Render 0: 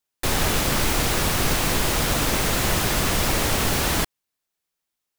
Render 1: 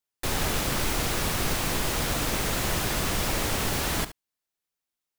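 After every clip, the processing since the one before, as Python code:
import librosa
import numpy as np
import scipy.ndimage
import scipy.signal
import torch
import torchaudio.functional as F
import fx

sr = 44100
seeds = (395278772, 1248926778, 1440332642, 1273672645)

y = x + 10.0 ** (-14.0 / 20.0) * np.pad(x, (int(71 * sr / 1000.0), 0))[:len(x)]
y = F.gain(torch.from_numpy(y), -5.5).numpy()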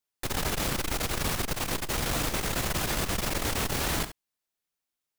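y = fx.transformer_sat(x, sr, knee_hz=120.0)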